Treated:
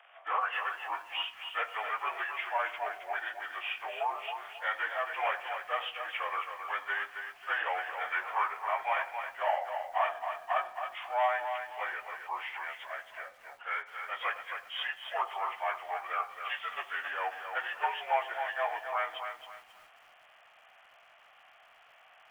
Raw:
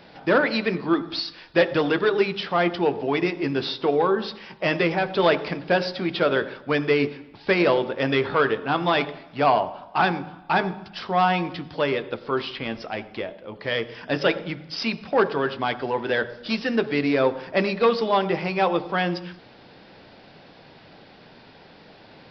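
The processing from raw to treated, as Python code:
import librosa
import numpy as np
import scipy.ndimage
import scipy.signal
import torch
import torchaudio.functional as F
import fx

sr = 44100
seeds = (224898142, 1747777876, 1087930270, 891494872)

y = fx.partial_stretch(x, sr, pct=85)
y = scipy.signal.sosfilt(scipy.signal.cheby1(4, 1.0, 710.0, 'highpass', fs=sr, output='sos'), y)
y = fx.echo_crushed(y, sr, ms=269, feedback_pct=35, bits=9, wet_db=-7.0)
y = F.gain(torch.from_numpy(y), -4.0).numpy()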